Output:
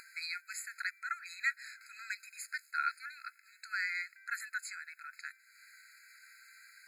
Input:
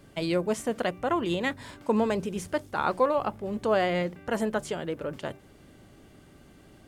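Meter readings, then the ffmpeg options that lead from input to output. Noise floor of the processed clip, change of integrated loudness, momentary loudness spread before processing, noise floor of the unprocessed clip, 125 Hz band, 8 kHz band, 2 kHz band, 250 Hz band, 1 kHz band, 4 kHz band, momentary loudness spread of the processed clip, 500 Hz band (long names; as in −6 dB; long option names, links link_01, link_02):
−66 dBFS, −10.5 dB, 9 LU, −54 dBFS, below −40 dB, −3.0 dB, 0.0 dB, below −40 dB, −12.5 dB, −8.0 dB, 21 LU, below −40 dB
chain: -af "acompressor=mode=upward:threshold=-36dB:ratio=2.5,afftfilt=real='re*eq(mod(floor(b*sr/1024/1300),2),1)':imag='im*eq(mod(floor(b*sr/1024/1300),2),1)':win_size=1024:overlap=0.75"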